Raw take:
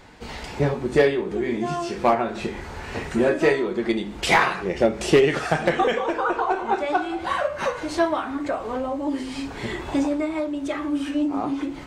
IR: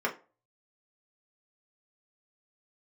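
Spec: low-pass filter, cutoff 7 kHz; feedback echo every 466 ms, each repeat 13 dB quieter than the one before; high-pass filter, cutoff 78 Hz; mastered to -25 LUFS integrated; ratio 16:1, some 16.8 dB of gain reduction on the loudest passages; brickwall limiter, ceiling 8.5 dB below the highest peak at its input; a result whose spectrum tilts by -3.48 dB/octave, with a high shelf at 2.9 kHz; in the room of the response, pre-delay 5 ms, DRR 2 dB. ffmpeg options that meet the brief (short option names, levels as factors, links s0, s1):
-filter_complex "[0:a]highpass=78,lowpass=7000,highshelf=f=2900:g=3.5,acompressor=threshold=0.0355:ratio=16,alimiter=level_in=1.12:limit=0.0631:level=0:latency=1,volume=0.891,aecho=1:1:466|932|1398:0.224|0.0493|0.0108,asplit=2[s0][s1];[1:a]atrim=start_sample=2205,adelay=5[s2];[s1][s2]afir=irnorm=-1:irlink=0,volume=0.266[s3];[s0][s3]amix=inputs=2:normalize=0,volume=2.24"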